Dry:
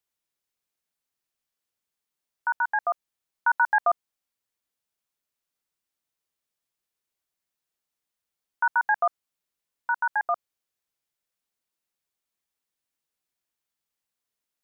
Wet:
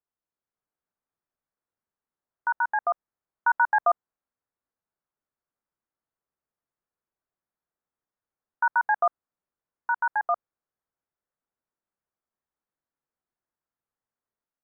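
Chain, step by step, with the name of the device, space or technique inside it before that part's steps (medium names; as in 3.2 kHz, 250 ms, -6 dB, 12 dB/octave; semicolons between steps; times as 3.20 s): action camera in a waterproof case (low-pass 1.6 kHz 24 dB/octave; level rider gain up to 4 dB; trim -3 dB; AAC 128 kbps 44.1 kHz)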